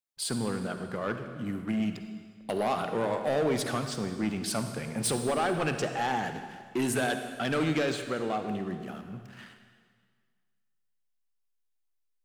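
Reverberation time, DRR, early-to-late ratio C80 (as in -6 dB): 1.8 s, 7.0 dB, 8.5 dB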